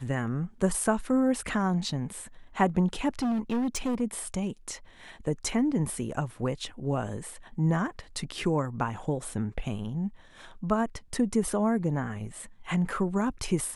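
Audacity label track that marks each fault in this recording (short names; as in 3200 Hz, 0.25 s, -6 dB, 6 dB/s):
3.190000	4.020000	clipped -25 dBFS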